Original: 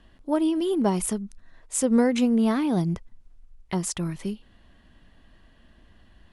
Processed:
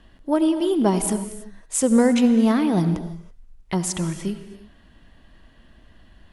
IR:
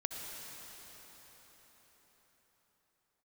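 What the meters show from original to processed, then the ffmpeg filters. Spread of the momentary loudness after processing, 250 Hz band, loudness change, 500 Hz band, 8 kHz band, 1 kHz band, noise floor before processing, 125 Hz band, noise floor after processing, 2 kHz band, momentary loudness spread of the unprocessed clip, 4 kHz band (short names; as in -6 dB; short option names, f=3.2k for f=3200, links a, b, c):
17 LU, +4.0 dB, +4.0 dB, +4.0 dB, +4.0 dB, +4.0 dB, -57 dBFS, +4.0 dB, -53 dBFS, +4.0 dB, 13 LU, +4.0 dB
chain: -filter_complex "[0:a]asplit=2[a][b];[1:a]atrim=start_sample=2205,afade=t=out:st=0.39:d=0.01,atrim=end_sample=17640[c];[b][c]afir=irnorm=-1:irlink=0,volume=-2dB[d];[a][d]amix=inputs=2:normalize=0,volume=-1dB"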